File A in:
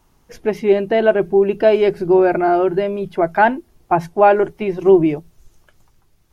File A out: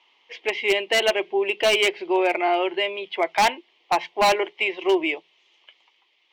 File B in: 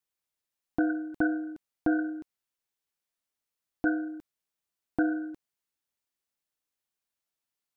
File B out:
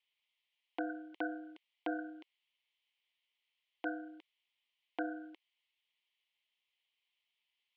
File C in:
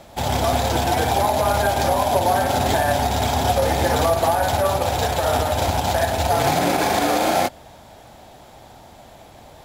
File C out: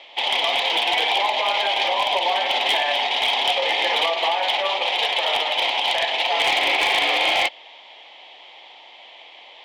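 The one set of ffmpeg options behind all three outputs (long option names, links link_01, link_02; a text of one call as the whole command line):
ffmpeg -i in.wav -af "highpass=frequency=410:width=0.5412,highpass=frequency=410:width=1.3066,equalizer=frequency=420:width_type=q:width=4:gain=-3,equalizer=frequency=630:width_type=q:width=4:gain=-4,equalizer=frequency=990:width_type=q:width=4:gain=5,equalizer=frequency=1500:width_type=q:width=4:gain=-9,equalizer=frequency=2100:width_type=q:width=4:gain=6,equalizer=frequency=3100:width_type=q:width=4:gain=9,lowpass=frequency=3300:width=0.5412,lowpass=frequency=3300:width=1.3066,aexciter=amount=3.4:drive=6.5:freq=2000,aeval=exprs='0.376*(abs(mod(val(0)/0.376+3,4)-2)-1)':channel_layout=same,volume=-3dB" out.wav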